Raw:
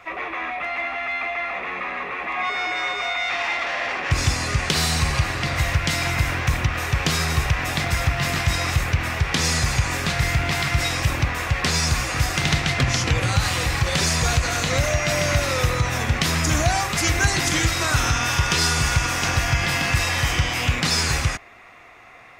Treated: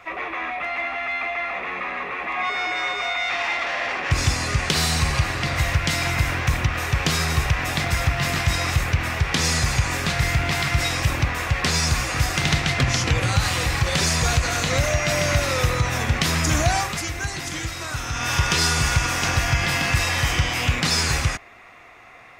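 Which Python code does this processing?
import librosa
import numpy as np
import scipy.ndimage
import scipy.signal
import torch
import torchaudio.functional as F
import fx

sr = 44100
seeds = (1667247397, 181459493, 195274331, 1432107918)

y = fx.edit(x, sr, fx.fade_down_up(start_s=16.79, length_s=1.57, db=-8.5, fade_s=0.28), tone=tone)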